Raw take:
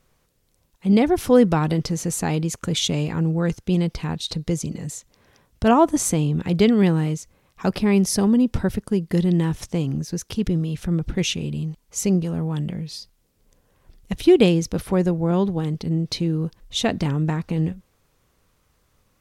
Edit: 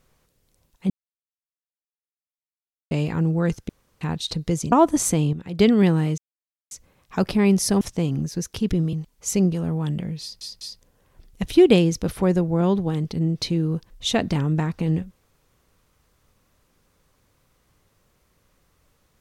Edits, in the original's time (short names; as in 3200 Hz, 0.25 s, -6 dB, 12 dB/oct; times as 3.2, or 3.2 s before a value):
0.9–2.91 mute
3.69–4.01 room tone
4.72–5.72 cut
6.33–6.59 gain -10 dB
7.18 insert silence 0.53 s
8.28–9.57 cut
10.69–11.63 cut
12.91 stutter in place 0.20 s, 3 plays